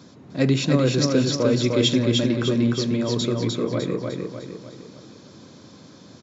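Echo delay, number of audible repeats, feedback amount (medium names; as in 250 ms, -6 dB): 302 ms, 5, 47%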